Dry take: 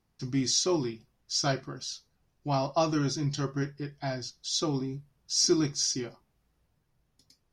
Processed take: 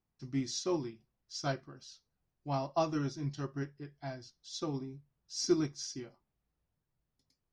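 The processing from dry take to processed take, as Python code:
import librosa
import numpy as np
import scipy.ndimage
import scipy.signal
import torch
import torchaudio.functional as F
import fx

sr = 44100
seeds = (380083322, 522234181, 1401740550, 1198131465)

y = fx.high_shelf(x, sr, hz=3900.0, db=-6.5)
y = fx.upward_expand(y, sr, threshold_db=-37.0, expansion=1.5)
y = y * librosa.db_to_amplitude(-2.5)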